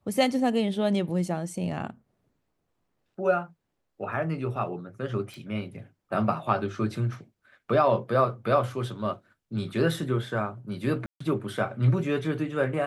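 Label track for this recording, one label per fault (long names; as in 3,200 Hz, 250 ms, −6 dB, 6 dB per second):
5.340000	5.340000	click
11.060000	11.200000	drop-out 144 ms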